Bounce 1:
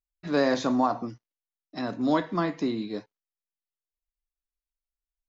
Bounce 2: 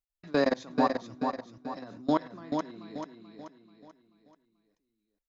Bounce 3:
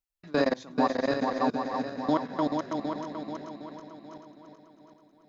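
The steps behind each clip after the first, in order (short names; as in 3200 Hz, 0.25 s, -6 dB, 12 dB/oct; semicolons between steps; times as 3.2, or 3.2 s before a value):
level quantiser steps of 23 dB; on a send: feedback echo 0.435 s, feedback 42%, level -5 dB
regenerating reverse delay 0.38 s, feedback 55%, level -2 dB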